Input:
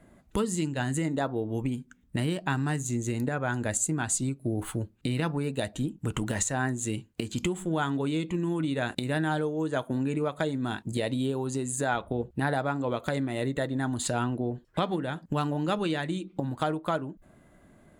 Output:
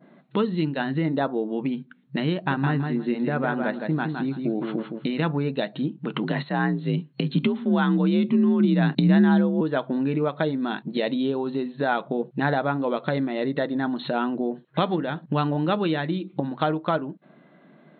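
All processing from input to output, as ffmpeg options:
-filter_complex "[0:a]asettb=1/sr,asplit=3[a][b][c];[a]atrim=end=2.344[d];[b]atrim=start=2.34:end=5.2,asetpts=PTS-STARTPTS,afade=t=in:d=0.004:c=qsin,afade=t=out:st=2.856:d=0.004:c=qsin,highshelf=f=4.9k:g=-8,aecho=1:1:163|326|489:0.562|0.107|0.0203,atrim=end_sample=126126[e];[c]atrim=start=5.196[f];[d][e]acrossfade=d=0.004:c1=hsin:c2=qsin[g];[g][f]acrossfade=d=0.004:c1=qsin:c2=hsin,asettb=1/sr,asplit=3[h][i][j];[h]atrim=end=6.234[k];[i]atrim=start=6.23:end=9.61,asetpts=PTS-STARTPTS,afade=t=in:d=0.004:c=qsin,afade=t=out:st=3.376:d=0.004:c=qsin,asubboost=boost=11:cutoff=140,afreqshift=47[l];[j]atrim=start=9.606[m];[k][l]acrossfade=d=0.004:c1=hsin:c2=qsin[n];[n][m]acrossfade=d=0.004:c1=qsin:c2=hsin,adynamicequalizer=threshold=0.00562:dfrequency=2800:dqfactor=0.84:tfrequency=2800:tqfactor=0.84:attack=5:release=100:ratio=0.375:range=2:mode=cutabove:tftype=bell,afftfilt=real='re*between(b*sr/4096,130,4300)':imag='im*between(b*sr/4096,130,4300)':win_size=4096:overlap=0.75,volume=5dB"

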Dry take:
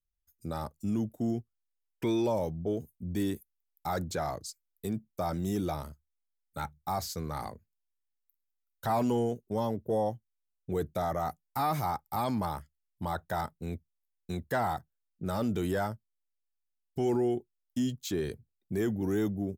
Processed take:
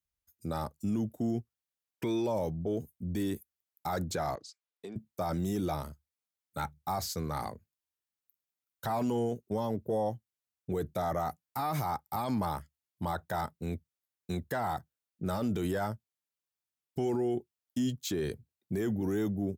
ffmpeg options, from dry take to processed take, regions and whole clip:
-filter_complex "[0:a]asettb=1/sr,asplit=3[a][b][c];[a]atrim=end=4.354[d];[b]atrim=start=4.35:end=4.96,asetpts=PTS-STARTPTS,afade=t=in:d=0.004:c=qsin,afade=t=out:st=0.606:d=0.004:c=qsin,acompressor=threshold=-40dB:ratio=2:attack=3.2:release=140:knee=1:detection=peak,highpass=310,lowpass=4.3k[e];[c]atrim=start=4.956[f];[d][e]acrossfade=d=0.004:c1=hsin:c2=qsin[g];[g][f]acrossfade=d=0.004:c1=qsin:c2=hsin,highpass=61,alimiter=level_in=1dB:limit=-24dB:level=0:latency=1:release=31,volume=-1dB,volume=1.5dB"

